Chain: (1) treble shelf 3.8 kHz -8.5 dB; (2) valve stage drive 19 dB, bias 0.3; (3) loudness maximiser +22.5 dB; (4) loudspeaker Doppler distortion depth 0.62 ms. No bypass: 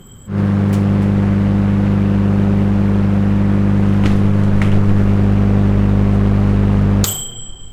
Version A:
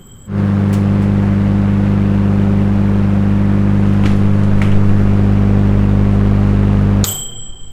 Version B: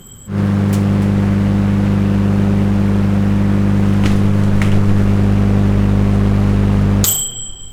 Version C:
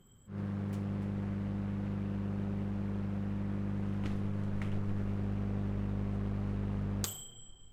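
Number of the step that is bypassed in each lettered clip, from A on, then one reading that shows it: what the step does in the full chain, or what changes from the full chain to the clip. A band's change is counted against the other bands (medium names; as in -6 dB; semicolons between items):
2, loudness change +1.5 LU; 1, 4 kHz band +3.0 dB; 3, crest factor change +5.5 dB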